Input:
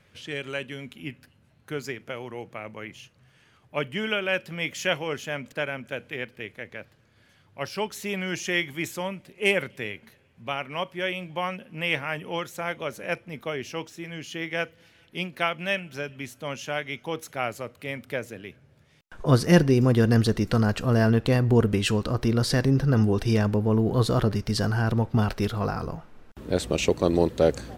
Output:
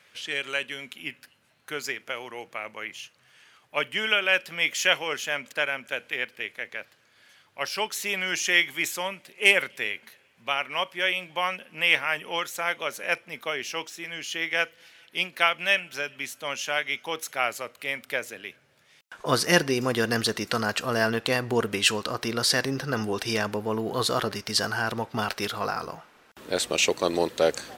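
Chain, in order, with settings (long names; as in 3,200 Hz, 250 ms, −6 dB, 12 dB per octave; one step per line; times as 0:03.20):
high-pass filter 1,300 Hz 6 dB per octave
level +7 dB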